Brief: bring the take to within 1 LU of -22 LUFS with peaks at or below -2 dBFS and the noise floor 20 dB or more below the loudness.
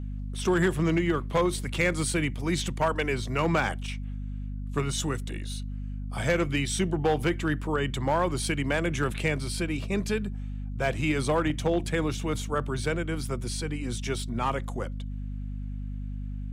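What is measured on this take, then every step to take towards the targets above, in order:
clipped 0.5%; flat tops at -17.5 dBFS; hum 50 Hz; harmonics up to 250 Hz; hum level -32 dBFS; loudness -29.0 LUFS; peak -17.5 dBFS; loudness target -22.0 LUFS
-> clip repair -17.5 dBFS; notches 50/100/150/200/250 Hz; gain +7 dB

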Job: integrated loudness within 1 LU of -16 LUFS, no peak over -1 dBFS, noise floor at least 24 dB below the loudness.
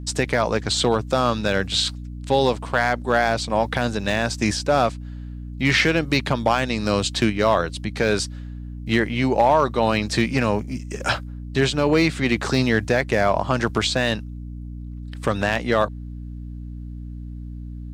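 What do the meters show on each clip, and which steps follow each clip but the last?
clipped 0.6%; flat tops at -8.5 dBFS; hum 60 Hz; harmonics up to 300 Hz; hum level -31 dBFS; loudness -21.5 LUFS; peak -8.5 dBFS; loudness target -16.0 LUFS
-> clip repair -8.5 dBFS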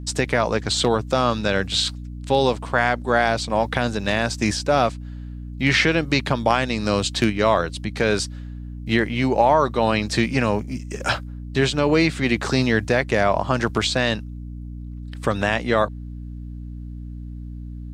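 clipped 0.0%; hum 60 Hz; harmonics up to 300 Hz; hum level -31 dBFS
-> de-hum 60 Hz, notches 5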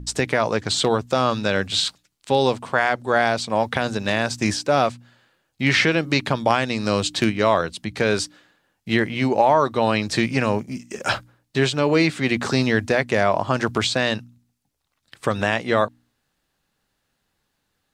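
hum none; loudness -21.5 LUFS; peak -2.5 dBFS; loudness target -16.0 LUFS
-> gain +5.5 dB; limiter -1 dBFS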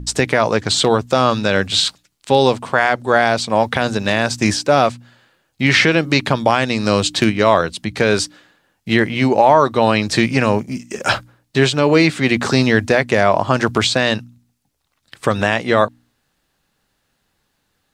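loudness -16.0 LUFS; peak -1.0 dBFS; noise floor -69 dBFS

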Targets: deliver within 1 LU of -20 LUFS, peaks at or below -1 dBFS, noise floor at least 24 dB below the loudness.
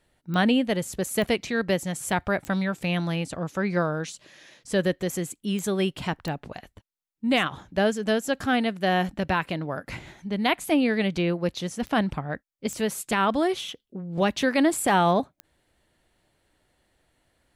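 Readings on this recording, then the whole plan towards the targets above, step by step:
clicks 8; loudness -26.0 LUFS; peak -12.0 dBFS; loudness target -20.0 LUFS
-> de-click; gain +6 dB

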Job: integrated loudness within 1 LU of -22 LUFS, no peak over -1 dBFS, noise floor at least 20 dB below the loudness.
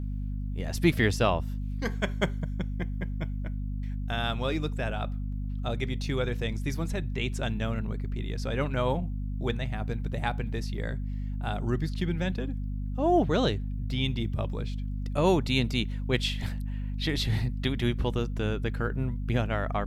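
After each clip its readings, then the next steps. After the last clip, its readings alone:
hum 50 Hz; harmonics up to 250 Hz; hum level -30 dBFS; loudness -30.0 LUFS; peak -8.5 dBFS; loudness target -22.0 LUFS
-> de-hum 50 Hz, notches 5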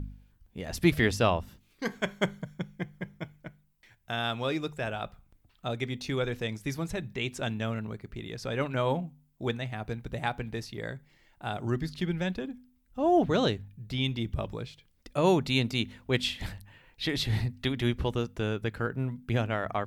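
hum none; loudness -31.0 LUFS; peak -8.5 dBFS; loudness target -22.0 LUFS
-> gain +9 dB; limiter -1 dBFS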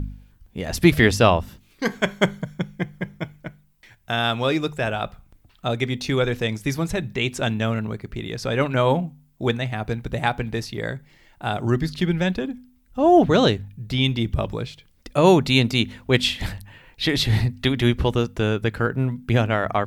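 loudness -22.5 LUFS; peak -1.0 dBFS; noise floor -58 dBFS

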